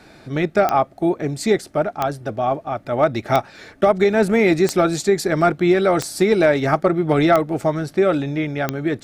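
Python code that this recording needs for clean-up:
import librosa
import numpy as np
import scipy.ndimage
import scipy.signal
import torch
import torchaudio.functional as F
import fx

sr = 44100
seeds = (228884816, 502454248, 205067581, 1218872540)

y = fx.fix_declip(x, sr, threshold_db=-5.5)
y = fx.fix_declick_ar(y, sr, threshold=10.0)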